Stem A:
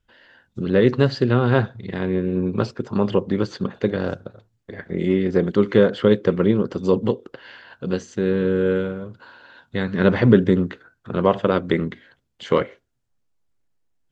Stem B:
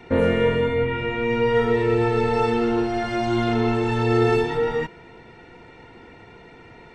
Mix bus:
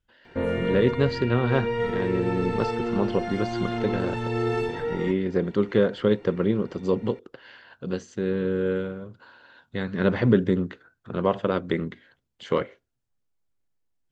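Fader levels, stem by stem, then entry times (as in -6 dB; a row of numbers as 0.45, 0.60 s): -5.5, -7.0 dB; 0.00, 0.25 s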